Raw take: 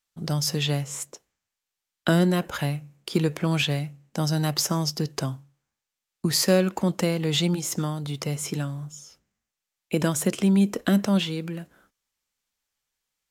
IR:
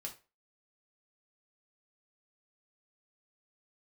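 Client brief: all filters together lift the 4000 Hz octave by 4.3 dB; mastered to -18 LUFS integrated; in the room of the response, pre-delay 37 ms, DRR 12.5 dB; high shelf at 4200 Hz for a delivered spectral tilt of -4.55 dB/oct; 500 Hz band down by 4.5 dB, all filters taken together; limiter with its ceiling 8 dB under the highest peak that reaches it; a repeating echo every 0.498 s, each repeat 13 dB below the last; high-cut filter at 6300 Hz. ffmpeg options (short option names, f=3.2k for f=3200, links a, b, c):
-filter_complex "[0:a]lowpass=6.3k,equalizer=f=500:t=o:g=-6,equalizer=f=4k:t=o:g=4,highshelf=f=4.2k:g=4,alimiter=limit=-14.5dB:level=0:latency=1,aecho=1:1:498|996|1494:0.224|0.0493|0.0108,asplit=2[a][b];[1:a]atrim=start_sample=2205,adelay=37[c];[b][c]afir=irnorm=-1:irlink=0,volume=-10dB[d];[a][d]amix=inputs=2:normalize=0,volume=8.5dB"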